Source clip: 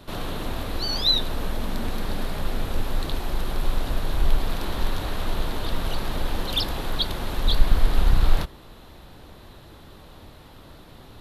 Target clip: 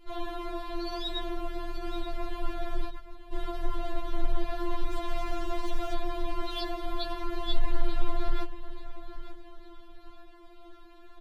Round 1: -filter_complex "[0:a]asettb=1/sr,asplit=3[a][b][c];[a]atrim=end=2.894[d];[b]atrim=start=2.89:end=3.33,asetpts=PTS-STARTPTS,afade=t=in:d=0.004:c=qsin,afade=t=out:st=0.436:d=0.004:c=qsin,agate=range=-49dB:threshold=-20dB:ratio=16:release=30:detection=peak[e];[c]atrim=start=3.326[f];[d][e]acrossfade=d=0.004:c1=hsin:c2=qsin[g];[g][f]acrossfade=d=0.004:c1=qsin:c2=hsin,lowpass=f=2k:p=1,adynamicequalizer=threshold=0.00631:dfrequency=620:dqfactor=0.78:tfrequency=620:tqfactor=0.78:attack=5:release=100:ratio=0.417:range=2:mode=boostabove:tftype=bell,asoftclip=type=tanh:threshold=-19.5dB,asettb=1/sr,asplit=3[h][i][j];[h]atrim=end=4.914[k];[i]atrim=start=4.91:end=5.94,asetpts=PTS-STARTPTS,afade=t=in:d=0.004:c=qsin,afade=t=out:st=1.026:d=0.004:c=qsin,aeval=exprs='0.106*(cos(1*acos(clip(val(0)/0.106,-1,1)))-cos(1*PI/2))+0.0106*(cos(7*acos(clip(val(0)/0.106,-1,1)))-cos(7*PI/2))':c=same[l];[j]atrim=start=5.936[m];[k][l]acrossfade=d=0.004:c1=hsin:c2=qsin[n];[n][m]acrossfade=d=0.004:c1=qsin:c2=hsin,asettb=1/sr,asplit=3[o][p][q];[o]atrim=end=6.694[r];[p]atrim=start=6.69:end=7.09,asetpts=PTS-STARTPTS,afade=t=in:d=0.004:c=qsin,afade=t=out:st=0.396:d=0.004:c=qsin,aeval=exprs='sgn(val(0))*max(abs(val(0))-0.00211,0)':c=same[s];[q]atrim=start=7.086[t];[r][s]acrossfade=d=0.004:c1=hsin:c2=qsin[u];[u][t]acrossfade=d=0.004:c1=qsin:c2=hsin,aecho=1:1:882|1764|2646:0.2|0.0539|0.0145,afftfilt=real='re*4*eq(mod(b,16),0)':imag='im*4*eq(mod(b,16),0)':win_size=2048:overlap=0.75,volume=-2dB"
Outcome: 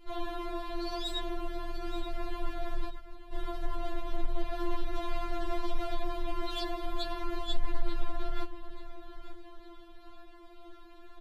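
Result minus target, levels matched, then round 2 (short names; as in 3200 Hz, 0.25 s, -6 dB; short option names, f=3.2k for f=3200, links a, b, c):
soft clip: distortion +8 dB
-filter_complex "[0:a]asettb=1/sr,asplit=3[a][b][c];[a]atrim=end=2.894[d];[b]atrim=start=2.89:end=3.33,asetpts=PTS-STARTPTS,afade=t=in:d=0.004:c=qsin,afade=t=out:st=0.436:d=0.004:c=qsin,agate=range=-49dB:threshold=-20dB:ratio=16:release=30:detection=peak[e];[c]atrim=start=3.326[f];[d][e]acrossfade=d=0.004:c1=hsin:c2=qsin[g];[g][f]acrossfade=d=0.004:c1=qsin:c2=hsin,lowpass=f=2k:p=1,adynamicequalizer=threshold=0.00631:dfrequency=620:dqfactor=0.78:tfrequency=620:tqfactor=0.78:attack=5:release=100:ratio=0.417:range=2:mode=boostabove:tftype=bell,asoftclip=type=tanh:threshold=-10dB,asettb=1/sr,asplit=3[h][i][j];[h]atrim=end=4.914[k];[i]atrim=start=4.91:end=5.94,asetpts=PTS-STARTPTS,afade=t=in:d=0.004:c=qsin,afade=t=out:st=1.026:d=0.004:c=qsin,aeval=exprs='0.106*(cos(1*acos(clip(val(0)/0.106,-1,1)))-cos(1*PI/2))+0.0106*(cos(7*acos(clip(val(0)/0.106,-1,1)))-cos(7*PI/2))':c=same[l];[j]atrim=start=5.936[m];[k][l]acrossfade=d=0.004:c1=hsin:c2=qsin[n];[n][m]acrossfade=d=0.004:c1=qsin:c2=hsin,asettb=1/sr,asplit=3[o][p][q];[o]atrim=end=6.694[r];[p]atrim=start=6.69:end=7.09,asetpts=PTS-STARTPTS,afade=t=in:d=0.004:c=qsin,afade=t=out:st=0.396:d=0.004:c=qsin,aeval=exprs='sgn(val(0))*max(abs(val(0))-0.00211,0)':c=same[s];[q]atrim=start=7.086[t];[r][s]acrossfade=d=0.004:c1=hsin:c2=qsin[u];[u][t]acrossfade=d=0.004:c1=qsin:c2=hsin,aecho=1:1:882|1764|2646:0.2|0.0539|0.0145,afftfilt=real='re*4*eq(mod(b,16),0)':imag='im*4*eq(mod(b,16),0)':win_size=2048:overlap=0.75,volume=-2dB"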